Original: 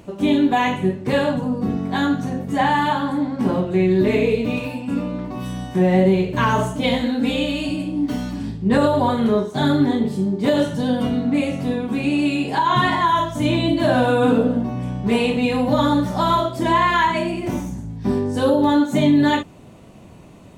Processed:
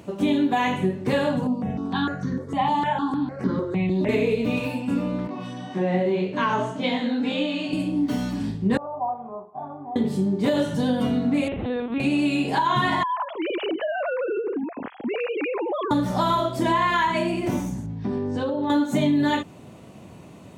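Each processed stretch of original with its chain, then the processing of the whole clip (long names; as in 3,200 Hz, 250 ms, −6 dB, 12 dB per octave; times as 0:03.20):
0:01.47–0:04.09: high-frequency loss of the air 69 metres + step-sequenced phaser 6.6 Hz 430–2,700 Hz
0:05.27–0:07.73: band-pass filter 180–5,000 Hz + upward compression, threshold −27 dBFS + chorus effect 1.8 Hz, delay 20 ms, depth 4.1 ms
0:08.77–0:09.96: formant resonators in series a + low-shelf EQ 180 Hz +6 dB
0:11.48–0:12.00: high-pass filter 100 Hz + mains-hum notches 60/120/180/240/300/360 Hz + linear-prediction vocoder at 8 kHz pitch kept
0:13.03–0:15.91: three sine waves on the formant tracks + downward compressor 8 to 1, threshold −23 dBFS
0:17.86–0:18.70: downward compressor 5 to 1, threshold −22 dBFS + high-frequency loss of the air 130 metres
whole clip: high-pass filter 81 Hz; downward compressor 3 to 1, threshold −19 dBFS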